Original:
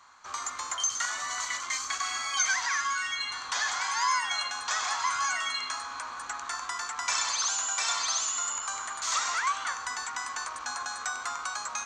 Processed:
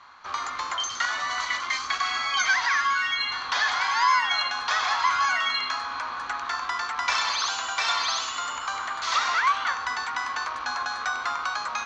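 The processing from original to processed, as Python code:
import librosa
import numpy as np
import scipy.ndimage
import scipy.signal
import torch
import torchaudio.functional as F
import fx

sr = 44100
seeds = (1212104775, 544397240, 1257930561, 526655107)

y = scipy.signal.sosfilt(scipy.signal.butter(4, 4600.0, 'lowpass', fs=sr, output='sos'), x)
y = y * librosa.db_to_amplitude(6.5)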